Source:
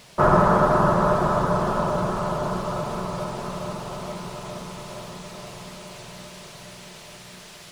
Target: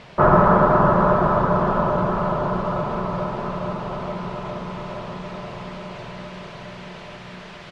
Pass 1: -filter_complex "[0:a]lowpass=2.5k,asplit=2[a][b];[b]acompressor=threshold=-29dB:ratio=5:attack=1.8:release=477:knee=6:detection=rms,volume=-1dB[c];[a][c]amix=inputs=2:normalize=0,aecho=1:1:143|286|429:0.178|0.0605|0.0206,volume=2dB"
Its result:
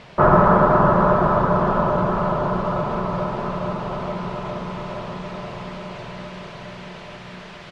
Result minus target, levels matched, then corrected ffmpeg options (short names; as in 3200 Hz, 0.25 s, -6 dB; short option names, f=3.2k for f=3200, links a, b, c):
compressor: peak gain reduction -5 dB
-filter_complex "[0:a]lowpass=2.5k,asplit=2[a][b];[b]acompressor=threshold=-35.5dB:ratio=5:attack=1.8:release=477:knee=6:detection=rms,volume=-1dB[c];[a][c]amix=inputs=2:normalize=0,aecho=1:1:143|286|429:0.178|0.0605|0.0206,volume=2dB"